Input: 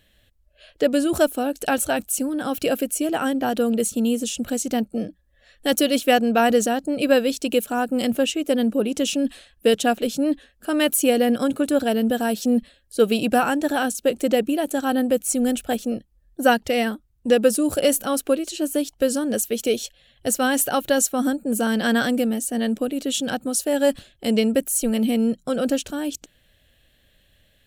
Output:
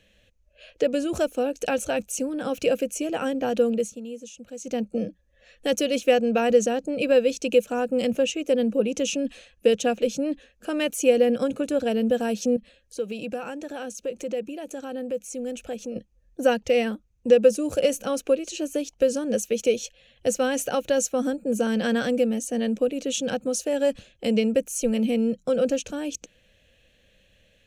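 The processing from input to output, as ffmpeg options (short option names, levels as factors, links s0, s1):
-filter_complex "[0:a]asettb=1/sr,asplit=3[s0][s1][s2];[s0]atrim=end=12.564[s3];[s1]atrim=start=12.56:end=15.96,asetpts=PTS-STARTPTS,afade=t=in:d=0.004:c=qsin,afade=t=out:st=3.396:d=0.004:c=qsin,acompressor=threshold=0.0158:ratio=2.5:attack=3.2:release=140:knee=1:detection=peak[s4];[s2]atrim=start=15.956[s5];[s3][s4]acrossfade=d=0.004:c1=hsin:c2=qsin[s6];[s6][s5]acrossfade=d=0.004:c1=qsin:c2=hsin,asplit=3[s7][s8][s9];[s7]atrim=end=4,asetpts=PTS-STARTPTS,afade=t=out:st=3.66:d=0.34:silence=0.141254[s10];[s8]atrim=start=4:end=4.57,asetpts=PTS-STARTPTS,volume=0.141[s11];[s9]atrim=start=4.57,asetpts=PTS-STARTPTS,afade=t=in:d=0.34:silence=0.141254[s12];[s10][s11][s12]concat=n=3:v=0:a=1,highshelf=f=8100:g=-9,acrossover=split=140[s13][s14];[s14]acompressor=threshold=0.0282:ratio=1.5[s15];[s13][s15]amix=inputs=2:normalize=0,equalizer=f=200:t=o:w=0.33:g=6,equalizer=f=500:t=o:w=0.33:g=11,equalizer=f=2500:t=o:w=0.33:g=9,equalizer=f=6300:t=o:w=0.33:g=12,equalizer=f=16000:t=o:w=0.33:g=-6,volume=0.75"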